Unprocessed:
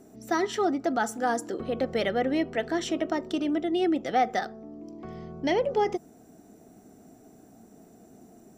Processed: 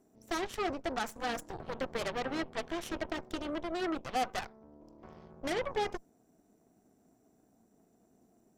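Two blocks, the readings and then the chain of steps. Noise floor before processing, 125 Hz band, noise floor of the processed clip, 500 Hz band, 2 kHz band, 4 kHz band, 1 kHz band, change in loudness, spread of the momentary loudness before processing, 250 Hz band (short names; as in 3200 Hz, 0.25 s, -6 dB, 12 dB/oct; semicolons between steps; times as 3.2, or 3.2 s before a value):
-54 dBFS, -6.5 dB, -69 dBFS, -9.5 dB, -5.5 dB, -4.0 dB, -8.0 dB, -8.5 dB, 13 LU, -11.0 dB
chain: added harmonics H 3 -17 dB, 7 -33 dB, 8 -15 dB, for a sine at -14 dBFS; gain -7.5 dB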